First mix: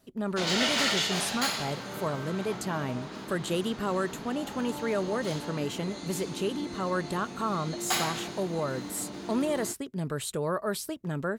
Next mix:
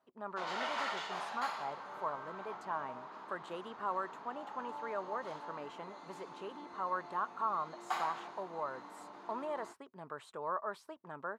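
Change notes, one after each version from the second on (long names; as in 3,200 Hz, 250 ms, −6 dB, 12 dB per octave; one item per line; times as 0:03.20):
background: add high-shelf EQ 9,300 Hz +8.5 dB
master: add resonant band-pass 1,000 Hz, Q 2.6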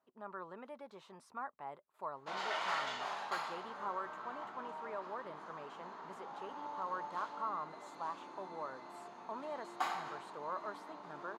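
speech −4.5 dB
background: entry +1.90 s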